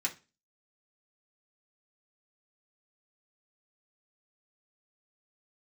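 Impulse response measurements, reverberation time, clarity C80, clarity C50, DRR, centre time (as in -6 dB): 0.30 s, 22.5 dB, 16.0 dB, -2.5 dB, 10 ms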